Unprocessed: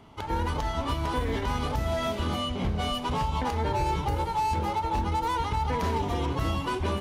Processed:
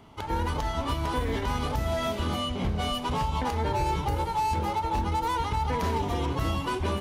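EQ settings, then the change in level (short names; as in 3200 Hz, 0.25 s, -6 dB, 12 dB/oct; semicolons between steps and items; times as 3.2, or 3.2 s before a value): high shelf 9500 Hz +4 dB; 0.0 dB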